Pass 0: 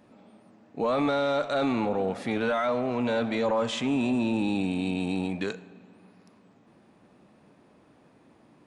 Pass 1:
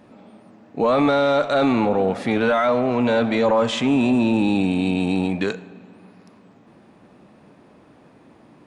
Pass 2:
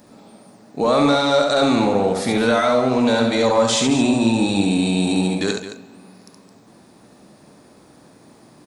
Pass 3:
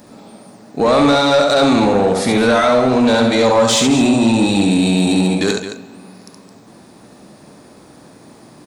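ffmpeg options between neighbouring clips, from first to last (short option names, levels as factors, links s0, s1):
-af "highshelf=f=5000:g=-4.5,volume=2.51"
-filter_complex "[0:a]aexciter=amount=5.4:drive=2.9:freq=4000,asplit=2[s0][s1];[s1]aecho=0:1:69.97|215.7:0.631|0.282[s2];[s0][s2]amix=inputs=2:normalize=0"
-af "asoftclip=type=tanh:threshold=0.266,volume=2"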